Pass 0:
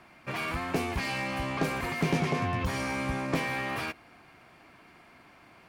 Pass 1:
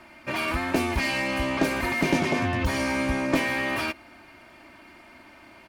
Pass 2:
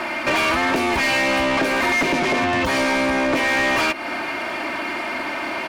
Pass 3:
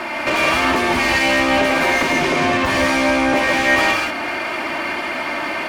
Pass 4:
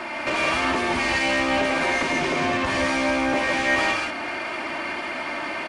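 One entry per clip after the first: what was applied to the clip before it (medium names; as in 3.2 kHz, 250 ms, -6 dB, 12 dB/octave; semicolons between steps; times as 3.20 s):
band-stop 1.2 kHz, Q 29; comb 3.3 ms, depth 58%; trim +4.5 dB
peaking EQ 330 Hz +4.5 dB 2.6 oct; compression 5:1, threshold -33 dBFS, peak gain reduction 17 dB; overdrive pedal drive 23 dB, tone 4.5 kHz, clips at -20 dBFS; trim +8.5 dB
gated-style reverb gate 210 ms rising, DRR 0 dB
resampled via 22.05 kHz; trim -6 dB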